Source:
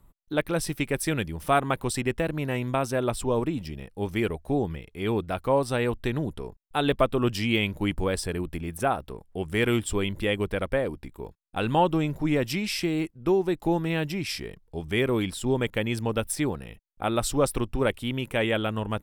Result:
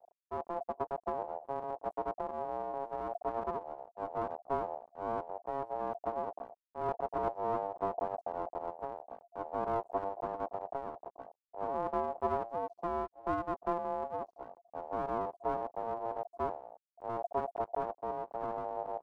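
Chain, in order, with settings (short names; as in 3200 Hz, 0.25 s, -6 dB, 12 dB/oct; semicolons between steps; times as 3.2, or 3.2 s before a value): inverse Chebyshev low-pass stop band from 870 Hz, stop band 50 dB; half-wave rectifier; ring modulator 690 Hz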